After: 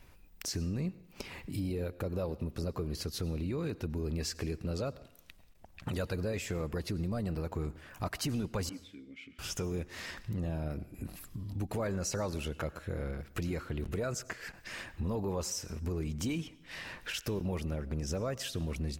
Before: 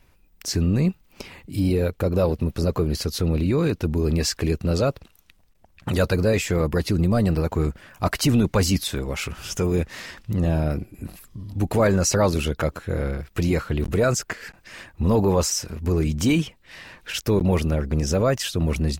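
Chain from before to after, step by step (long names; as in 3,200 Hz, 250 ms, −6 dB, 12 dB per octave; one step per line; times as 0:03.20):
downward compressor 2.5 to 1, threshold −40 dBFS, peak gain reduction 16.5 dB
0:08.69–0:09.39: formant filter i
convolution reverb RT60 0.75 s, pre-delay 86 ms, DRR 18.5 dB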